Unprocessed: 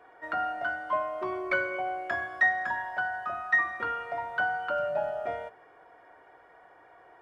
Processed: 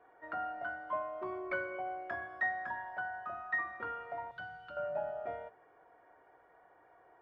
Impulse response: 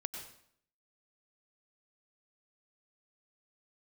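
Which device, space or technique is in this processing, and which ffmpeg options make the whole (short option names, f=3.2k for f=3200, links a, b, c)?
through cloth: -filter_complex "[0:a]asettb=1/sr,asplit=3[a][b][c];[a]atrim=end=4.314[d];[b]atrim=start=4.31:end=4.77,asetpts=PTS-STARTPTS,afade=t=in:d=0.004:c=qsin,afade=t=out:st=0.456:d=0.004:c=qsin,equalizer=f=125:t=o:w=1:g=4,equalizer=f=250:t=o:w=1:g=-7,equalizer=f=500:t=o:w=1:g=-9,equalizer=f=1k:t=o:w=1:g=-11,equalizer=f=2k:t=o:w=1:g=-6,equalizer=f=4k:t=o:w=1:g=9[e];[c]atrim=start=4.766[f];[d][e]acrossfade=d=0.004:c1=hsin:c2=qsin[g];[g][f]acrossfade=d=0.004:c1=qsin:c2=hsin,highshelf=f=3.6k:g=-17,volume=-6.5dB"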